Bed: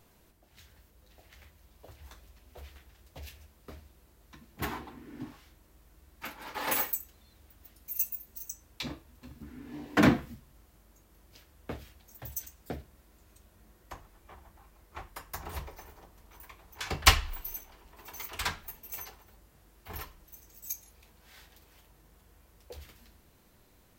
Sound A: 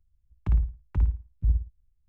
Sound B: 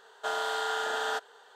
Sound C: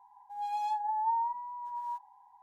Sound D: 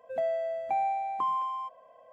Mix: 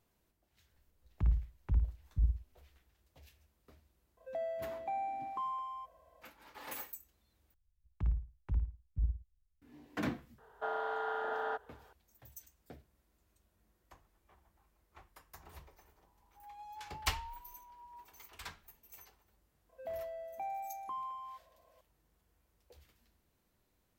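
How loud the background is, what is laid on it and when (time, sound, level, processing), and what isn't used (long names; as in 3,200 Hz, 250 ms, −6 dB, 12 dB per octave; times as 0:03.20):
bed −14.5 dB
0:00.74: mix in A −7 dB
0:04.17: mix in D −9 dB
0:07.54: overwrite with A −10 dB
0:10.38: mix in B −3.5 dB + low-pass filter 1,300 Hz
0:16.06: mix in C −17 dB
0:19.69: mix in D −12 dB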